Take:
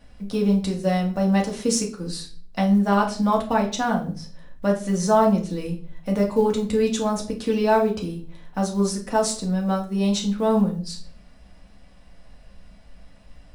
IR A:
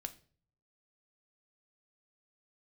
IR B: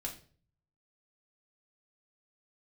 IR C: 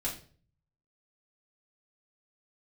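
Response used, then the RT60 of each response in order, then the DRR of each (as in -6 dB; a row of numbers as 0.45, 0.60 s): B; 0.45, 0.45, 0.45 s; 8.0, -1.0, -6.0 dB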